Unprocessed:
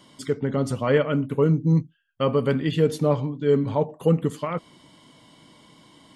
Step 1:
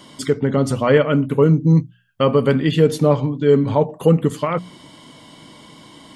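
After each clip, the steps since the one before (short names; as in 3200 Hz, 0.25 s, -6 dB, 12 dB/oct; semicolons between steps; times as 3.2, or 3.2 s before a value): notches 60/120/180 Hz; in parallel at -2.5 dB: compressor, threshold -29 dBFS, peak gain reduction 14 dB; on the sum: gain +4.5 dB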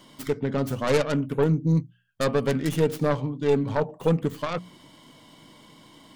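tracing distortion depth 0.41 ms; gain -8 dB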